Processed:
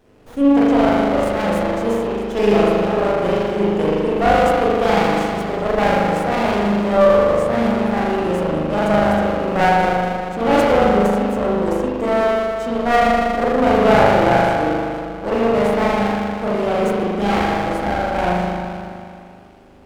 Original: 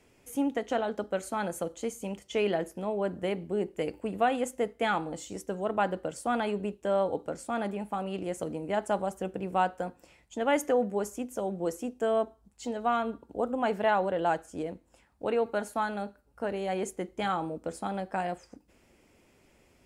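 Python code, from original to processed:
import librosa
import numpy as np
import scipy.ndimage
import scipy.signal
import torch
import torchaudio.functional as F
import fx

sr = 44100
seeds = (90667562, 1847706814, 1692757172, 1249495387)

y = fx.rev_spring(x, sr, rt60_s=2.4, pass_ms=(39,), chirp_ms=55, drr_db=-9.0)
y = fx.running_max(y, sr, window=17)
y = F.gain(torch.from_numpy(y), 6.0).numpy()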